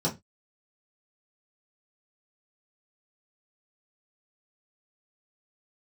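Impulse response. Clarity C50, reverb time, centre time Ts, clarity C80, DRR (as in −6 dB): 15.5 dB, 0.20 s, 16 ms, 24.0 dB, −6.0 dB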